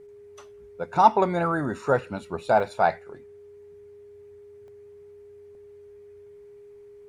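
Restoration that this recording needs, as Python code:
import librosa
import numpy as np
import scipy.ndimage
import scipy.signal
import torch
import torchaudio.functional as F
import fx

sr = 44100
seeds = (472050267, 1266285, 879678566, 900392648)

y = fx.notch(x, sr, hz=410.0, q=30.0)
y = fx.fix_interpolate(y, sr, at_s=(2.6, 4.68, 5.55), length_ms=1.3)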